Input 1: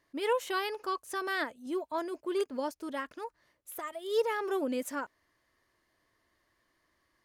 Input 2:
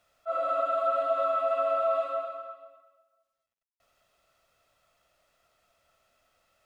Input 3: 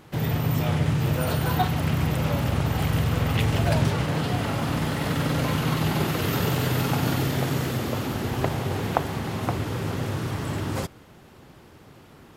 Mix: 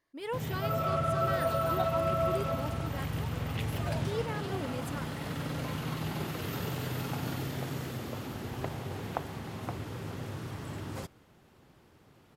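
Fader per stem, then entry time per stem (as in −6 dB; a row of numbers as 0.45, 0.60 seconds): −7.0, −4.0, −11.0 decibels; 0.00, 0.35, 0.20 seconds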